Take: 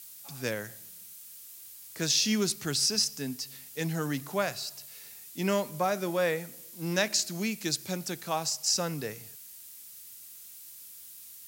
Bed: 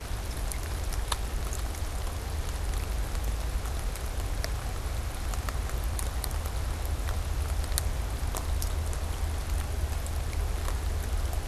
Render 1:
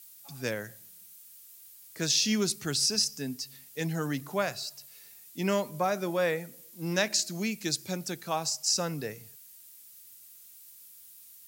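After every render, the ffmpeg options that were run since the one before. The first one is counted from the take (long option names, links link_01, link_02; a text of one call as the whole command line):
ffmpeg -i in.wav -af "afftdn=noise_reduction=6:noise_floor=-48" out.wav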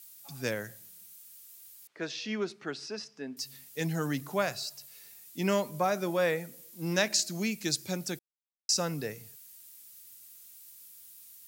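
ffmpeg -i in.wav -filter_complex "[0:a]asettb=1/sr,asplit=3[link_01][link_02][link_03];[link_01]atrim=end=1.874[link_04];[link_02]atrim=start=1.87:end=3.37,asetpts=PTS-STARTPTS,afade=type=in:duration=0.004:curve=qsin,afade=type=out:start_time=1.496:duration=0.004:curve=qsin,highpass=320,lowpass=2100[link_05];[link_03]atrim=start=3.366[link_06];[link_04][link_05]acrossfade=duration=0.004:curve1=hsin:curve2=qsin[link_07];[link_07][link_06]acrossfade=duration=0.004:curve1=qsin:curve2=hsin,asplit=3[link_08][link_09][link_10];[link_08]atrim=end=8.19,asetpts=PTS-STARTPTS,afade=type=out:start_time=8.186:duration=0.004:curve=hsin[link_11];[link_09]atrim=start=8.19:end=8.69,asetpts=PTS-STARTPTS,volume=0[link_12];[link_10]atrim=start=8.69,asetpts=PTS-STARTPTS,afade=type=in:duration=0.004:curve=hsin[link_13];[link_11][link_12][link_13]concat=n=3:v=0:a=1" out.wav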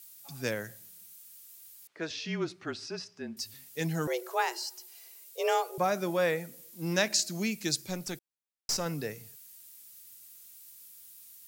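ffmpeg -i in.wav -filter_complex "[0:a]asettb=1/sr,asplit=3[link_01][link_02][link_03];[link_01]atrim=end=2.104[link_04];[link_02]atrim=start=2.1:end=3.54,asetpts=PTS-STARTPTS,afade=type=in:duration=0.004:curve=qsin,afade=type=out:start_time=1.436:duration=0.004:curve=qsin,afreqshift=-31[link_05];[link_03]atrim=start=3.536[link_06];[link_04][link_05]acrossfade=duration=0.004:curve1=hsin:curve2=qsin[link_07];[link_07][link_06]acrossfade=duration=0.004:curve1=qsin:curve2=hsin,asettb=1/sr,asplit=3[link_08][link_09][link_10];[link_08]atrim=end=4.074[link_11];[link_09]atrim=start=4.07:end=5.78,asetpts=PTS-STARTPTS,afade=type=in:duration=0.004:curve=qsin,afade=type=out:start_time=1.706:duration=0.004:curve=qsin,afreqshift=230[link_12];[link_10]atrim=start=5.776[link_13];[link_11][link_12]acrossfade=duration=0.004:curve1=hsin:curve2=qsin[link_14];[link_14][link_13]acrossfade=duration=0.004:curve1=qsin:curve2=hsin,asettb=1/sr,asplit=3[link_15][link_16][link_17];[link_15]atrim=end=7.814[link_18];[link_16]atrim=start=7.81:end=8.86,asetpts=PTS-STARTPTS,afade=type=in:duration=0.004:curve=qsin,afade=type=out:start_time=1.046:duration=0.004:curve=qsin,aeval=exprs='(tanh(15.8*val(0)+0.45)-tanh(0.45))/15.8':channel_layout=same[link_19];[link_17]atrim=start=8.856[link_20];[link_18][link_19]acrossfade=duration=0.004:curve1=hsin:curve2=qsin[link_21];[link_21][link_20]acrossfade=duration=0.004:curve1=qsin:curve2=hsin" out.wav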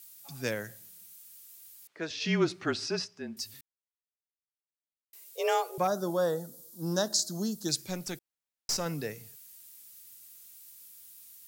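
ffmpeg -i in.wav -filter_complex "[0:a]asplit=3[link_01][link_02][link_03];[link_01]afade=type=out:start_time=2.2:duration=0.02[link_04];[link_02]acontrast=64,afade=type=in:start_time=2.2:duration=0.02,afade=type=out:start_time=3.05:duration=0.02[link_05];[link_03]afade=type=in:start_time=3.05:duration=0.02[link_06];[link_04][link_05][link_06]amix=inputs=3:normalize=0,asettb=1/sr,asplit=3[link_07][link_08][link_09];[link_07]atrim=end=5.874[link_10];[link_08]atrim=start=5.87:end=7.69,asetpts=PTS-STARTPTS,afade=type=in:duration=0.004:curve=qsin,afade=type=out:start_time=1.816:duration=0.004:curve=qsin,asuperstop=centerf=2300:order=4:qfactor=0.97[link_11];[link_09]atrim=start=7.686[link_12];[link_10][link_11]acrossfade=duration=0.004:curve1=hsin:curve2=qsin[link_13];[link_13][link_12]acrossfade=duration=0.004:curve1=qsin:curve2=hsin,asplit=3[link_14][link_15][link_16];[link_14]atrim=end=3.61,asetpts=PTS-STARTPTS,afade=type=out:start_time=3.606:duration=0.004:curve=hsin[link_17];[link_15]atrim=start=3.61:end=5.13,asetpts=PTS-STARTPTS,volume=0[link_18];[link_16]atrim=start=5.13,asetpts=PTS-STARTPTS,afade=type=in:duration=0.004:curve=hsin[link_19];[link_17][link_18][link_19]concat=n=3:v=0:a=1" out.wav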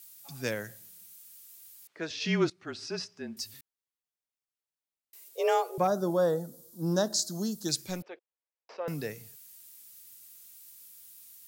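ffmpeg -i in.wav -filter_complex "[0:a]asettb=1/sr,asplit=3[link_01][link_02][link_03];[link_01]atrim=end=5.284[link_04];[link_02]atrim=start=5.28:end=7.17,asetpts=PTS-STARTPTS,afade=type=in:duration=0.004:curve=qsin,afade=type=out:start_time=1.886:duration=0.004:curve=qsin,tiltshelf=frequency=1200:gain=3.5[link_05];[link_03]atrim=start=7.166[link_06];[link_04][link_05]acrossfade=duration=0.004:curve1=hsin:curve2=qsin[link_07];[link_07][link_06]acrossfade=duration=0.004:curve1=qsin:curve2=hsin,asettb=1/sr,asplit=3[link_08][link_09][link_10];[link_08]atrim=end=8.024[link_11];[link_09]atrim=start=8.02:end=8.88,asetpts=PTS-STARTPTS,afade=type=in:duration=0.004:curve=qsin,afade=type=out:start_time=0.856:duration=0.004:curve=qsin,highpass=frequency=440:width=0.5412,highpass=frequency=440:width=1.3066,equalizer=frequency=490:width_type=q:width=4:gain=4,equalizer=frequency=780:width_type=q:width=4:gain=-4,equalizer=frequency=1400:width_type=q:width=4:gain=-8,equalizer=frequency=2000:width_type=q:width=4:gain=-6,lowpass=frequency=2400:width=0.5412,lowpass=frequency=2400:width=1.3066[link_12];[link_10]atrim=start=8.876[link_13];[link_11][link_12]acrossfade=duration=0.004:curve1=hsin:curve2=qsin[link_14];[link_14][link_13]acrossfade=duration=0.004:curve1=qsin:curve2=hsin,asplit=2[link_15][link_16];[link_15]atrim=end=2.5,asetpts=PTS-STARTPTS,afade=type=out:start_time=2.496:duration=0.004:curve=hsin:silence=0.0891251[link_17];[link_16]atrim=start=2.5,asetpts=PTS-STARTPTS,afade=type=in:duration=0.7:silence=0.0891251[link_18];[link_17][link_18]concat=n=2:v=0:a=1" out.wav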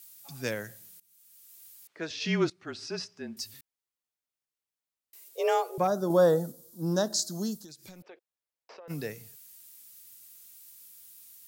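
ffmpeg -i in.wav -filter_complex "[0:a]asettb=1/sr,asplit=3[link_01][link_02][link_03];[link_01]atrim=end=6.104[link_04];[link_02]atrim=start=6.1:end=6.52,asetpts=PTS-STARTPTS,afade=type=in:duration=0.004:curve=qsin,afade=type=out:start_time=0.416:duration=0.004:curve=qsin,acontrast=21[link_05];[link_03]atrim=start=6.516[link_06];[link_04][link_05]acrossfade=duration=0.004:curve1=hsin:curve2=qsin[link_07];[link_07][link_06]acrossfade=duration=0.004:curve1=qsin:curve2=hsin,asplit=3[link_08][link_09][link_10];[link_08]afade=type=out:start_time=7.57:duration=0.02[link_11];[link_09]acompressor=threshold=-44dB:ratio=20:attack=3.2:release=140:knee=1:detection=peak,afade=type=in:start_time=7.57:duration=0.02,afade=type=out:start_time=8.89:duration=0.02[link_12];[link_10]afade=type=in:start_time=8.89:duration=0.02[link_13];[link_11][link_12][link_13]amix=inputs=3:normalize=0,asplit=2[link_14][link_15];[link_14]atrim=end=1,asetpts=PTS-STARTPTS,afade=type=out:start_time=0.996:duration=0.004:curve=hsin:silence=0.0841395[link_16];[link_15]atrim=start=1,asetpts=PTS-STARTPTS,afade=type=in:duration=0.63:silence=0.0841395[link_17];[link_16][link_17]concat=n=2:v=0:a=1" out.wav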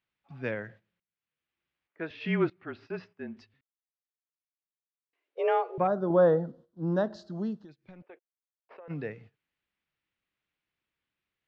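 ffmpeg -i in.wav -af "lowpass=frequency=2600:width=0.5412,lowpass=frequency=2600:width=1.3066,agate=range=-13dB:threshold=-52dB:ratio=16:detection=peak" out.wav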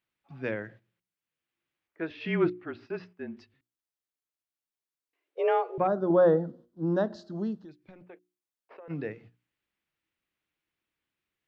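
ffmpeg -i in.wav -af "equalizer=frequency=320:width=2.8:gain=5,bandreject=frequency=60:width_type=h:width=6,bandreject=frequency=120:width_type=h:width=6,bandreject=frequency=180:width_type=h:width=6,bandreject=frequency=240:width_type=h:width=6,bandreject=frequency=300:width_type=h:width=6,bandreject=frequency=360:width_type=h:width=6" out.wav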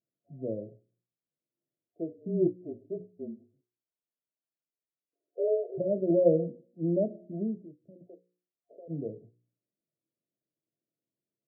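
ffmpeg -i in.wav -af "bandreject=frequency=60:width_type=h:width=6,bandreject=frequency=120:width_type=h:width=6,bandreject=frequency=180:width_type=h:width=6,bandreject=frequency=240:width_type=h:width=6,bandreject=frequency=300:width_type=h:width=6,bandreject=frequency=360:width_type=h:width=6,bandreject=frequency=420:width_type=h:width=6,bandreject=frequency=480:width_type=h:width=6,bandreject=frequency=540:width_type=h:width=6,afftfilt=real='re*between(b*sr/4096,100,700)':imag='im*between(b*sr/4096,100,700)':win_size=4096:overlap=0.75" out.wav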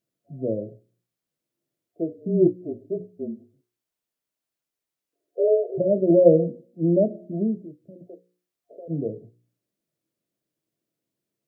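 ffmpeg -i in.wav -af "volume=8dB" out.wav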